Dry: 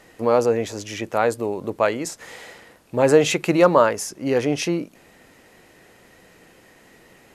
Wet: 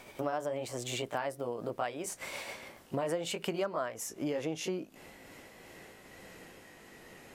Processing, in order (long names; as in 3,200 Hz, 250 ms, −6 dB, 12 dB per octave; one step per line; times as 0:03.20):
pitch glide at a constant tempo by +3.5 semitones ending unshifted
downward compressor 5 to 1, threshold −33 dBFS, peak gain reduction 21 dB